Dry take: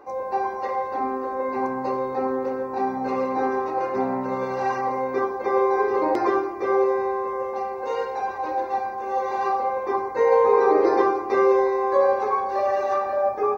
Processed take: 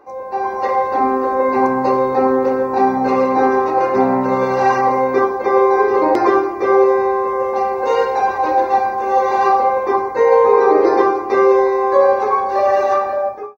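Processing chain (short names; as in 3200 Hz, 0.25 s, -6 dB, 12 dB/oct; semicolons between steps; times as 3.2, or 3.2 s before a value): ending faded out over 0.77 s; AGC gain up to 11.5 dB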